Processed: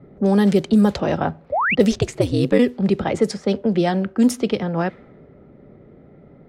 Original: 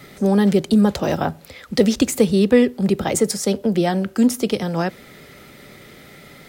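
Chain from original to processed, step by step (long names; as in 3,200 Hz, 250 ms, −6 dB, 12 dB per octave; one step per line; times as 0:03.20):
low-pass that shuts in the quiet parts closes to 520 Hz, open at −10.5 dBFS
0:01.52–0:01.75: sound drawn into the spectrogram rise 520–3,000 Hz −19 dBFS
0:01.91–0:02.58: ring modulation 190 Hz → 47 Hz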